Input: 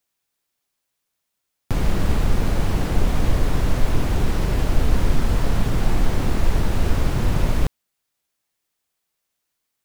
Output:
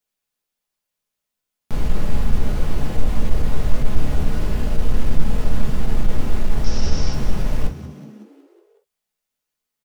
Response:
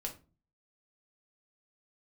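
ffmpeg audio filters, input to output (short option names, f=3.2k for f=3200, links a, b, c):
-filter_complex "[0:a]volume=12dB,asoftclip=hard,volume=-12dB,asettb=1/sr,asplit=3[a][b][c];[a]atrim=end=6.644[d];[b]atrim=start=6.64:end=7.13,asetpts=PTS-STARTPTS,afade=t=in:d=0.004:c=qsin,afade=t=out:st=0.486:d=0.004:c=qsin,lowpass=f=5.5k:t=q:w=11[e];[c]atrim=start=7.126[f];[d][e]acrossfade=d=0.004:c1=hsin:c2=qsin[g];[g][f]acrossfade=d=0.004:c1=qsin:c2=hsin,asplit=7[h][i][j][k][l][m][n];[i]adelay=184,afreqshift=66,volume=-14dB[o];[j]adelay=368,afreqshift=132,volume=-18.7dB[p];[k]adelay=552,afreqshift=198,volume=-23.5dB[q];[l]adelay=736,afreqshift=264,volume=-28.2dB[r];[m]adelay=920,afreqshift=330,volume=-32.9dB[s];[n]adelay=1104,afreqshift=396,volume=-37.7dB[t];[h][o][p][q][r][s][t]amix=inputs=7:normalize=0[u];[1:a]atrim=start_sample=2205,atrim=end_sample=3087[v];[u][v]afir=irnorm=-1:irlink=0,volume=-3.5dB"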